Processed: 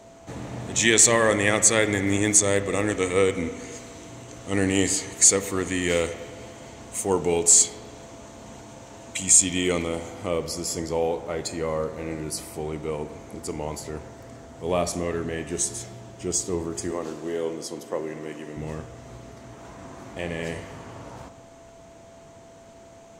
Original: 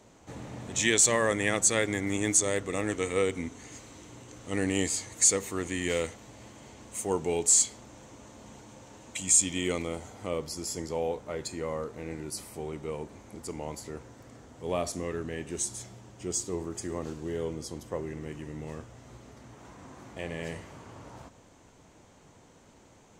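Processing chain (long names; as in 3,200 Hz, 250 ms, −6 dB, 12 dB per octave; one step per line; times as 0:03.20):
0:16.91–0:18.57: high-pass filter 260 Hz 12 dB per octave
spring reverb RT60 1.8 s, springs 40/51/58 ms, chirp 35 ms, DRR 11.5 dB
steady tone 670 Hz −54 dBFS
level +6 dB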